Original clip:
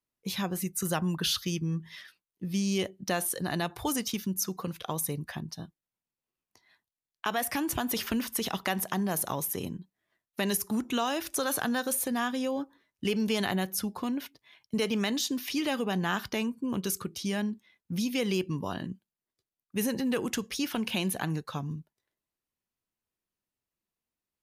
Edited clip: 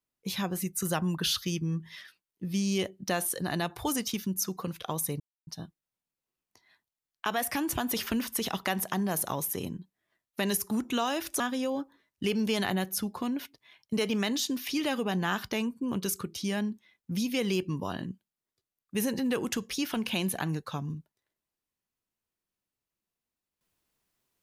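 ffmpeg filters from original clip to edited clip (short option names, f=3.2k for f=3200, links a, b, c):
-filter_complex "[0:a]asplit=4[a][b][c][d];[a]atrim=end=5.2,asetpts=PTS-STARTPTS,afade=t=out:st=5.196:d=0.004:c=hsin[e];[b]atrim=start=5.2:end=5.47,asetpts=PTS-STARTPTS,volume=0[f];[c]atrim=start=5.47:end=11.402,asetpts=PTS-STARTPTS,afade=t=in:d=0.004:c=hsin[g];[d]atrim=start=12.208[h];[e][f][g]concat=n=3:v=0:a=1[i];[i][h]acrossfade=d=0.004:c1=hsin:c2=hsin"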